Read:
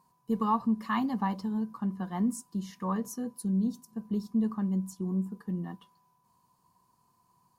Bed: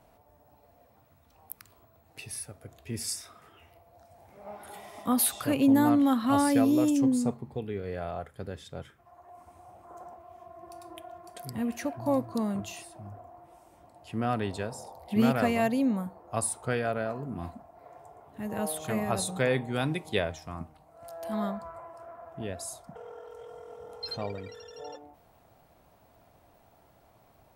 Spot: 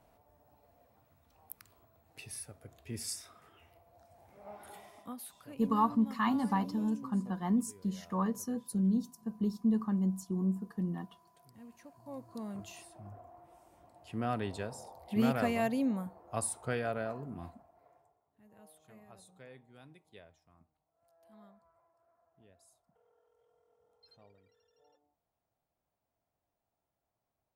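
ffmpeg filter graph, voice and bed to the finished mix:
-filter_complex "[0:a]adelay=5300,volume=0.891[s0];[1:a]volume=3.76,afade=t=out:st=4.71:d=0.46:silence=0.149624,afade=t=in:st=12.05:d=1.05:silence=0.141254,afade=t=out:st=17.11:d=1.08:silence=0.0794328[s1];[s0][s1]amix=inputs=2:normalize=0"

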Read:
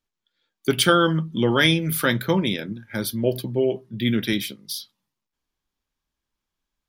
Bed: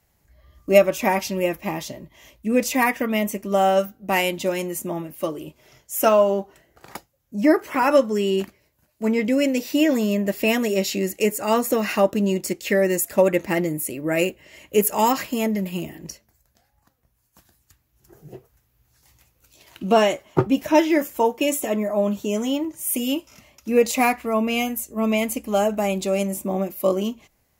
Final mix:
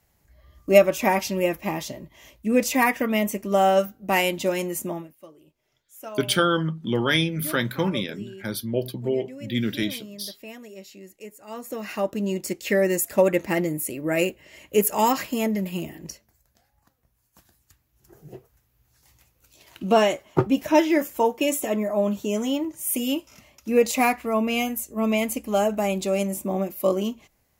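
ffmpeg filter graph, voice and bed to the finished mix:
-filter_complex "[0:a]adelay=5500,volume=0.668[s0];[1:a]volume=8.41,afade=t=out:st=4.85:d=0.3:silence=0.1,afade=t=in:st=11.46:d=1.29:silence=0.112202[s1];[s0][s1]amix=inputs=2:normalize=0"

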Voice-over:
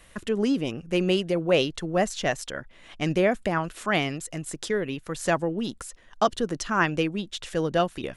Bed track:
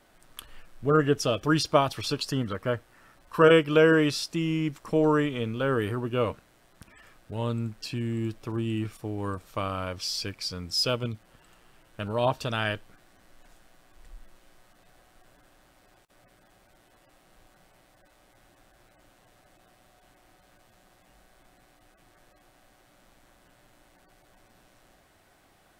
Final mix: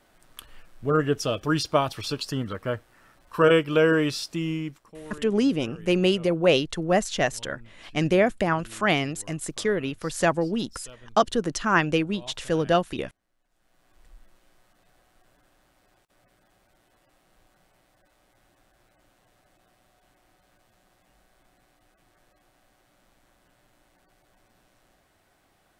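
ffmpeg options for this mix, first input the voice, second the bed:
-filter_complex "[0:a]adelay=4950,volume=1.26[s0];[1:a]volume=5.96,afade=t=out:st=4.49:d=0.43:silence=0.105925,afade=t=in:st=13.5:d=0.43:silence=0.158489[s1];[s0][s1]amix=inputs=2:normalize=0"

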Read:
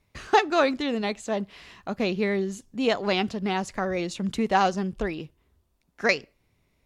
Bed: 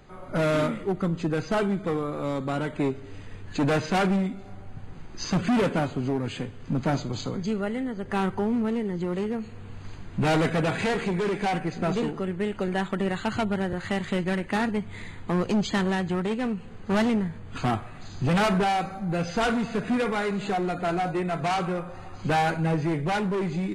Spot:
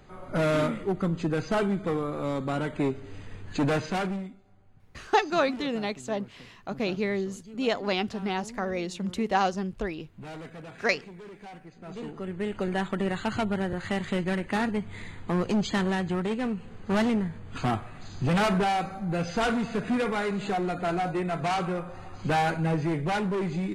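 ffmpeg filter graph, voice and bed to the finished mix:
-filter_complex "[0:a]adelay=4800,volume=0.708[s0];[1:a]volume=6.31,afade=t=out:st=3.6:d=0.82:silence=0.133352,afade=t=in:st=11.84:d=0.74:silence=0.141254[s1];[s0][s1]amix=inputs=2:normalize=0"

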